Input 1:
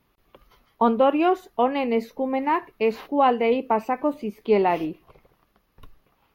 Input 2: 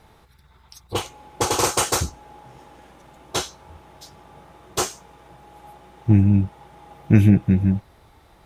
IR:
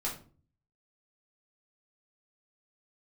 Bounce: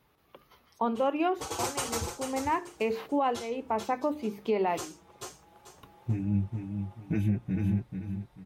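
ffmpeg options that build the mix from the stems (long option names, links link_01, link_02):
-filter_complex "[0:a]highpass=100,bandreject=frequency=50:width_type=h:width=6,bandreject=frequency=100:width_type=h:width=6,bandreject=frequency=150:width_type=h:width=6,bandreject=frequency=200:width_type=h:width=6,bandreject=frequency=250:width_type=h:width=6,bandreject=frequency=300:width_type=h:width=6,bandreject=frequency=350:width_type=h:width=6,bandreject=frequency=400:width_type=h:width=6,bandreject=frequency=450:width_type=h:width=6,volume=-1dB[link_01];[1:a]asplit=2[link_02][link_03];[link_03]adelay=5.2,afreqshift=2.3[link_04];[link_02][link_04]amix=inputs=2:normalize=1,volume=-9dB,afade=type=in:start_time=1.05:duration=0.34:silence=0.421697,asplit=3[link_05][link_06][link_07];[link_06]volume=-7dB[link_08];[link_07]apad=whole_len=279711[link_09];[link_01][link_09]sidechaincompress=threshold=-41dB:ratio=8:attack=7.1:release=695[link_10];[link_08]aecho=0:1:439|878|1317|1756:1|0.27|0.0729|0.0197[link_11];[link_10][link_05][link_11]amix=inputs=3:normalize=0,alimiter=limit=-18.5dB:level=0:latency=1:release=305"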